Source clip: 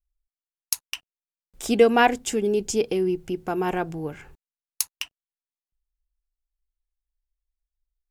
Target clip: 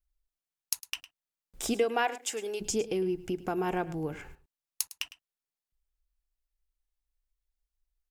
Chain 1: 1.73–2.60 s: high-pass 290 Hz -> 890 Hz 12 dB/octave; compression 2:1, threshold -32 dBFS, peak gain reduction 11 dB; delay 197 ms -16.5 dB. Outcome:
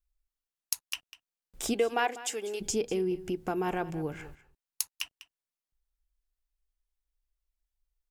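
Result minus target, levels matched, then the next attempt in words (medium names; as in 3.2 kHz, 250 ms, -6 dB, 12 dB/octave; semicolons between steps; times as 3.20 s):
echo 91 ms late
1.73–2.60 s: high-pass 290 Hz -> 890 Hz 12 dB/octave; compression 2:1, threshold -32 dBFS, peak gain reduction 11 dB; delay 106 ms -16.5 dB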